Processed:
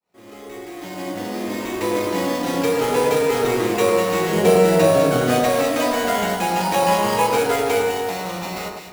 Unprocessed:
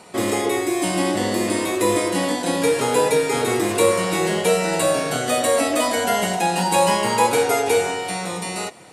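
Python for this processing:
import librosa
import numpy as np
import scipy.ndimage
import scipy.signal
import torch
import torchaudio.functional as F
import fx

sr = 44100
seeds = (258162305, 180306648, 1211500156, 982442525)

y = fx.fade_in_head(x, sr, length_s=2.44)
y = fx.low_shelf(y, sr, hz=500.0, db=9.5, at=(4.33, 5.39))
y = fx.sample_hold(y, sr, seeds[0], rate_hz=9700.0, jitter_pct=0)
y = fx.echo_alternate(y, sr, ms=101, hz=1600.0, feedback_pct=61, wet_db=-2.5)
y = y * librosa.db_to_amplitude(-2.5)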